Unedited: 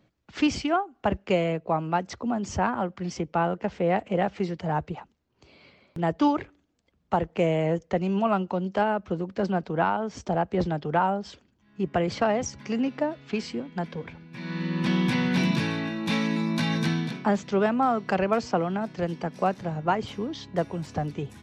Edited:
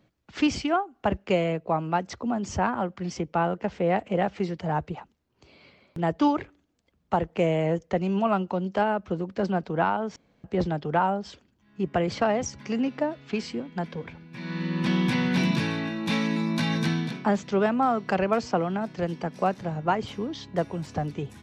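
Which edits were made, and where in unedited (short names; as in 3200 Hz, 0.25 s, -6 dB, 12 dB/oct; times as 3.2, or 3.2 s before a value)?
10.16–10.44 room tone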